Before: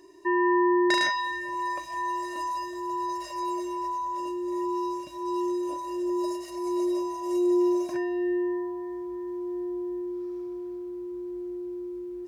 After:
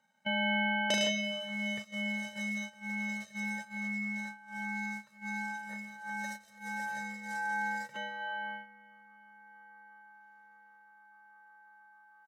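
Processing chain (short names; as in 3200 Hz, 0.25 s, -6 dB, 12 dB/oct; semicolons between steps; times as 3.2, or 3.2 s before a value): comb 1.2 ms, depth 53%; ring modulator 1200 Hz; dynamic EQ 5800 Hz, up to +4 dB, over -51 dBFS, Q 1.6; gate -35 dBFS, range -12 dB; gain -4.5 dB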